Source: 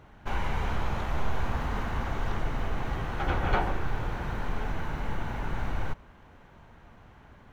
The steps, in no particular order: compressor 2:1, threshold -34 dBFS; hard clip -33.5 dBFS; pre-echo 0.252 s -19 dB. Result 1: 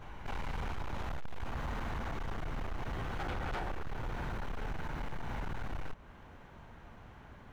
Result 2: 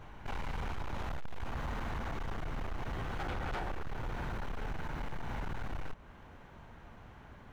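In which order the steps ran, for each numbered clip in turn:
pre-echo > compressor > hard clip; compressor > pre-echo > hard clip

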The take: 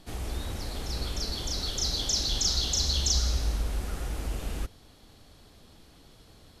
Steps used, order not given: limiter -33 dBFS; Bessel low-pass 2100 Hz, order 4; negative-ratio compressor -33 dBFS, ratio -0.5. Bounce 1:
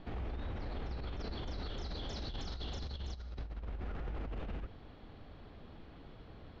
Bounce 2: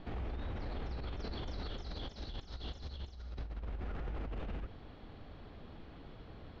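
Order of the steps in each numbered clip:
Bessel low-pass > negative-ratio compressor > limiter; negative-ratio compressor > Bessel low-pass > limiter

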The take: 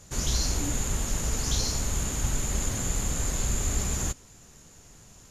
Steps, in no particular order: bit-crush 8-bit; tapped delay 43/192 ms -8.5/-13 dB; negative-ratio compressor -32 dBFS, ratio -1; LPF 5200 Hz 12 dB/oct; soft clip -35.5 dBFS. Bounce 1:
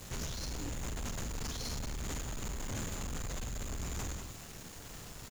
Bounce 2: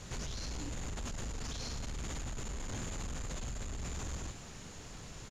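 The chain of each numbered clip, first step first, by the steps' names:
LPF > negative-ratio compressor > bit-crush > tapped delay > soft clip; tapped delay > negative-ratio compressor > bit-crush > soft clip > LPF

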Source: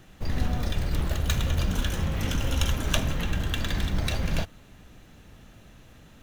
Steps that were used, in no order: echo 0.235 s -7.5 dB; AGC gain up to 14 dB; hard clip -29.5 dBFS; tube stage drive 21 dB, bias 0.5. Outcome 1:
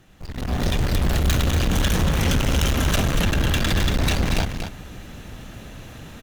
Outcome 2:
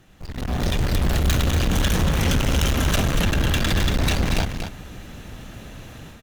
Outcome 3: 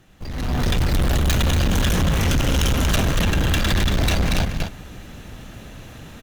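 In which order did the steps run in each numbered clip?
hard clip > tube stage > echo > AGC; hard clip > tube stage > AGC > echo; tube stage > echo > hard clip > AGC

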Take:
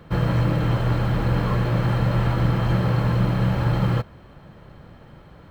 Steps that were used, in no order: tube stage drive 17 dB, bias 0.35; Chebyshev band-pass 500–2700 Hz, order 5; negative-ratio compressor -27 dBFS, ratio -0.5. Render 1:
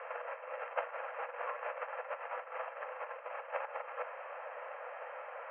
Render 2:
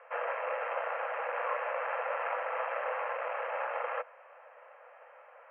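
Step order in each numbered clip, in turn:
negative-ratio compressor > tube stage > Chebyshev band-pass; tube stage > Chebyshev band-pass > negative-ratio compressor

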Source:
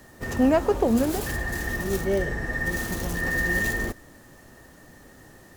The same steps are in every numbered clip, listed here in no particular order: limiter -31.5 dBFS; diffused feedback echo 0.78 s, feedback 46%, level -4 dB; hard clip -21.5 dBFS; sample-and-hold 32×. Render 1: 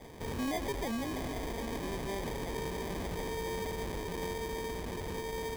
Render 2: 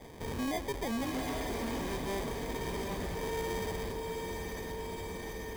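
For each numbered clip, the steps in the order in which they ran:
hard clip > diffused feedback echo > sample-and-hold > limiter; sample-and-hold > diffused feedback echo > hard clip > limiter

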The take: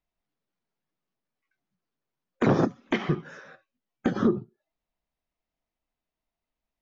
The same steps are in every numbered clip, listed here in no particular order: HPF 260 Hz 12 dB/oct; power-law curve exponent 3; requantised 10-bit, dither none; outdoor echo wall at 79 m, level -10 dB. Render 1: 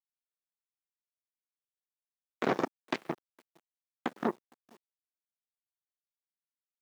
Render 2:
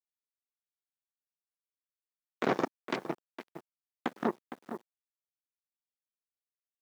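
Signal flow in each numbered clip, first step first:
outdoor echo > power-law curve > requantised > HPF; power-law curve > outdoor echo > requantised > HPF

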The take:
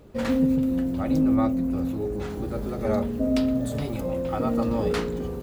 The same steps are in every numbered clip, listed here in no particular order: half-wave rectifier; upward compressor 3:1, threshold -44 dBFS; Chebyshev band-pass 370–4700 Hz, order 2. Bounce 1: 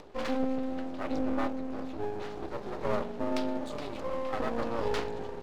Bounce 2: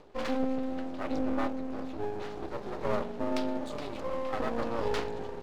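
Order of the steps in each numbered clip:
Chebyshev band-pass > half-wave rectifier > upward compressor; upward compressor > Chebyshev band-pass > half-wave rectifier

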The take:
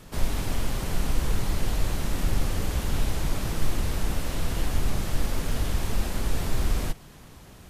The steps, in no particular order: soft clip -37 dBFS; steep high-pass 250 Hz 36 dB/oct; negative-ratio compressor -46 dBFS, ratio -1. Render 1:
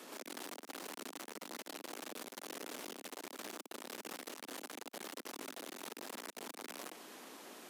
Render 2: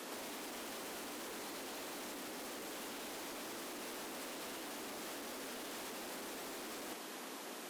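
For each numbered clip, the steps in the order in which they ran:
soft clip > steep high-pass > negative-ratio compressor; steep high-pass > soft clip > negative-ratio compressor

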